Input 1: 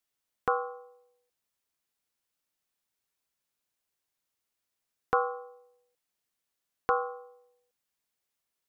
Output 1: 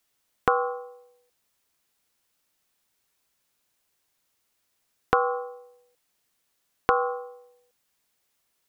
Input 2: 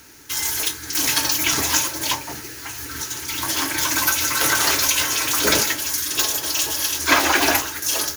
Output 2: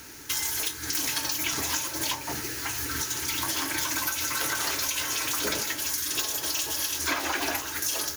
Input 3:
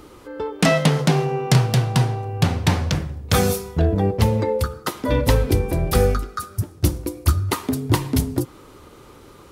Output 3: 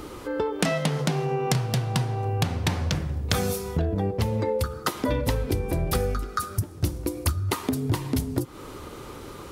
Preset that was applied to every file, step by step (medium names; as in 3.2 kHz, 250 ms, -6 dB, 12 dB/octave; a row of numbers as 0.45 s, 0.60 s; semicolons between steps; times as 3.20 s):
compression 6:1, threshold -28 dBFS; normalise loudness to -27 LUFS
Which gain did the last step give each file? +10.5 dB, +1.5 dB, +5.5 dB